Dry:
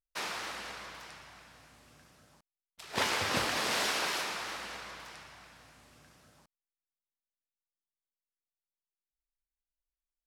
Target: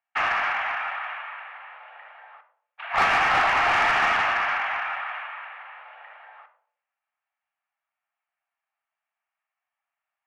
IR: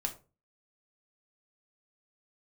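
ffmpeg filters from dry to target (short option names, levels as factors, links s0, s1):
-filter_complex "[0:a]asplit=2[s0][s1];[1:a]atrim=start_sample=2205,asetrate=24696,aresample=44100,highshelf=f=2000:g=-5.5[s2];[s1][s2]afir=irnorm=-1:irlink=0,volume=0.794[s3];[s0][s3]amix=inputs=2:normalize=0,highpass=f=360:t=q:w=0.5412,highpass=f=360:t=q:w=1.307,lowpass=f=2500:t=q:w=0.5176,lowpass=f=2500:t=q:w=0.7071,lowpass=f=2500:t=q:w=1.932,afreqshift=270,asplit=2[s4][s5];[s5]highpass=f=720:p=1,volume=10,asoftclip=type=tanh:threshold=0.282[s6];[s4][s6]amix=inputs=2:normalize=0,lowpass=f=2100:p=1,volume=0.501"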